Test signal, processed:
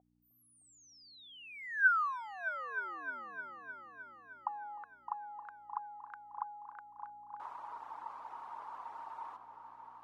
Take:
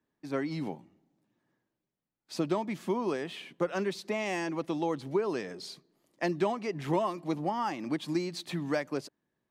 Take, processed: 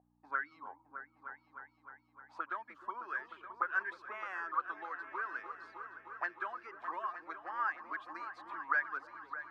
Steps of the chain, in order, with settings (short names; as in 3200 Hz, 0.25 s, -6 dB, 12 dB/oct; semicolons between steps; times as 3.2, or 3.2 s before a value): reverb removal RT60 0.81 s; HPF 240 Hz 24 dB/oct; bell 1200 Hz +10.5 dB 0.65 oct; hum 60 Hz, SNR 12 dB; auto-wah 720–1600 Hz, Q 12, up, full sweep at -27 dBFS; on a send: repeats that get brighter 0.307 s, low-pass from 400 Hz, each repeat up 2 oct, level -6 dB; on the sum: gain +8.5 dB